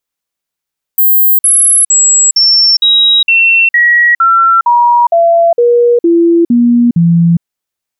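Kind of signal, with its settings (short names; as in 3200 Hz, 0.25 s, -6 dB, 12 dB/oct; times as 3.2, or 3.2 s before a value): stepped sine 15300 Hz down, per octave 2, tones 14, 0.41 s, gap 0.05 s -4 dBFS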